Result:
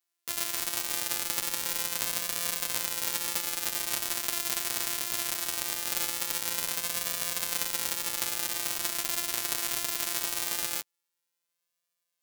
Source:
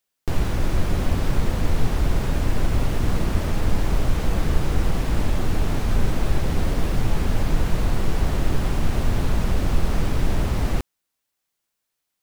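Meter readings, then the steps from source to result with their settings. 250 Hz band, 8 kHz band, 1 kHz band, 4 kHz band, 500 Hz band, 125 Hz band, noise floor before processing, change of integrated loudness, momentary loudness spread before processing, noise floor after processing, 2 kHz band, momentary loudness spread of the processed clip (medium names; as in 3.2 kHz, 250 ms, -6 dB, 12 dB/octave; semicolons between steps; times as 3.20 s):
-20.5 dB, +10.0 dB, -8.0 dB, +4.0 dB, -14.0 dB, -31.0 dB, -80 dBFS, -4.0 dB, 1 LU, -84 dBFS, -2.0 dB, 1 LU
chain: sorted samples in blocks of 256 samples; flange 0.21 Hz, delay 8.5 ms, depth 1.4 ms, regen -12%; differentiator; trim +8.5 dB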